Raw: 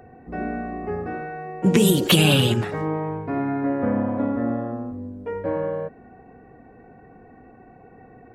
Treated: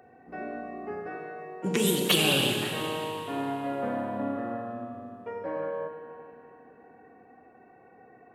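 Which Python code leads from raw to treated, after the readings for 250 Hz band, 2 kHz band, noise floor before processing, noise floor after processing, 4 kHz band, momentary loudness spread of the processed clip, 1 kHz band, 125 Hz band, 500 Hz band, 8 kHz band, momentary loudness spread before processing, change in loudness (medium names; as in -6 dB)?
-10.0 dB, -3.5 dB, -49 dBFS, -56 dBFS, -3.5 dB, 18 LU, -4.0 dB, -13.0 dB, -6.0 dB, -3.5 dB, 16 LU, -6.5 dB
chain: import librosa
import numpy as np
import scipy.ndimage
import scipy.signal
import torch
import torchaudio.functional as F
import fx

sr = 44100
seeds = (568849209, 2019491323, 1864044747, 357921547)

y = fx.highpass(x, sr, hz=450.0, slope=6)
y = fx.rev_schroeder(y, sr, rt60_s=2.8, comb_ms=29, drr_db=3.0)
y = y * 10.0 ** (-5.0 / 20.0)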